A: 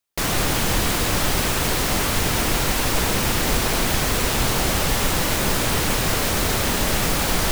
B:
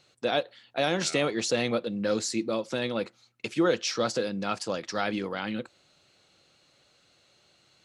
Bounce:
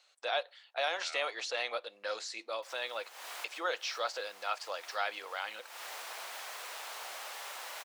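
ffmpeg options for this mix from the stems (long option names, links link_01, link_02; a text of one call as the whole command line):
ffmpeg -i stem1.wav -i stem2.wav -filter_complex "[0:a]highshelf=frequency=5100:gain=-6,adelay=2450,volume=-18dB[link_01];[1:a]acrossover=split=4700[link_02][link_03];[link_03]acompressor=threshold=-48dB:ratio=4:attack=1:release=60[link_04];[link_02][link_04]amix=inputs=2:normalize=0,volume=-3dB,asplit=2[link_05][link_06];[link_06]apad=whole_len=439554[link_07];[link_01][link_07]sidechaincompress=threshold=-43dB:ratio=8:attack=5.2:release=226[link_08];[link_08][link_05]amix=inputs=2:normalize=0,highpass=frequency=640:width=0.5412,highpass=frequency=640:width=1.3066" out.wav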